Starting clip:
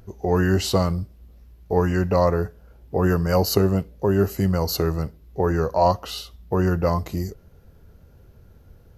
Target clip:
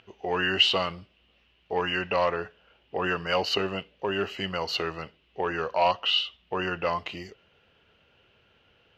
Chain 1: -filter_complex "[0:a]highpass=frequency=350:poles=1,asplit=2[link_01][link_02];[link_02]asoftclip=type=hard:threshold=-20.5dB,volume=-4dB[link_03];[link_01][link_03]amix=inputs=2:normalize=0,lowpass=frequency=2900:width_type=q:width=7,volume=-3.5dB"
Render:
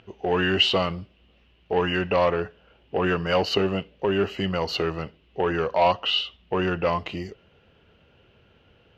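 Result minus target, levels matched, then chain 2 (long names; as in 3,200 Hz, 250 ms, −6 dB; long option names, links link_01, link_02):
250 Hz band +5.0 dB
-filter_complex "[0:a]highpass=frequency=1100:poles=1,asplit=2[link_01][link_02];[link_02]asoftclip=type=hard:threshold=-20.5dB,volume=-4dB[link_03];[link_01][link_03]amix=inputs=2:normalize=0,lowpass=frequency=2900:width_type=q:width=7,volume=-3.5dB"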